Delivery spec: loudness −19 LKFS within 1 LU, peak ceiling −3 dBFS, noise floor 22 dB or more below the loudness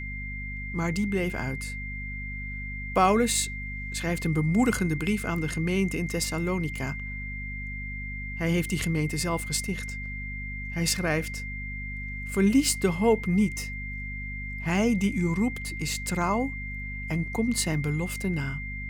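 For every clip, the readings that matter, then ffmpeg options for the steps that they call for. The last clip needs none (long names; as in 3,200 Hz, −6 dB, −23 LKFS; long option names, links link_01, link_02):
mains hum 50 Hz; hum harmonics up to 250 Hz; level of the hum −34 dBFS; interfering tone 2,100 Hz; level of the tone −36 dBFS; integrated loudness −28.0 LKFS; sample peak −9.5 dBFS; target loudness −19.0 LKFS
→ -af "bandreject=frequency=50:width_type=h:width=4,bandreject=frequency=100:width_type=h:width=4,bandreject=frequency=150:width_type=h:width=4,bandreject=frequency=200:width_type=h:width=4,bandreject=frequency=250:width_type=h:width=4"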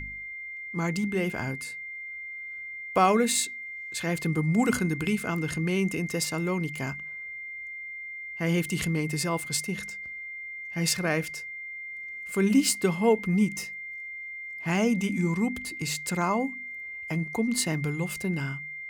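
mains hum none found; interfering tone 2,100 Hz; level of the tone −36 dBFS
→ -af "bandreject=frequency=2100:width=30"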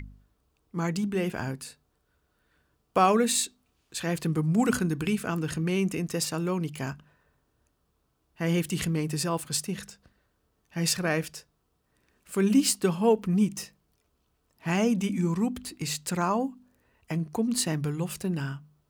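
interfering tone none found; integrated loudness −28.0 LKFS; sample peak −9.5 dBFS; target loudness −19.0 LKFS
→ -af "volume=9dB,alimiter=limit=-3dB:level=0:latency=1"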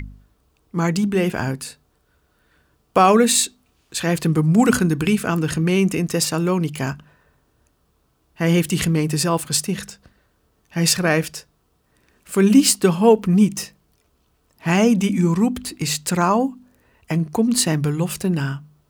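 integrated loudness −19.0 LKFS; sample peak −3.0 dBFS; background noise floor −64 dBFS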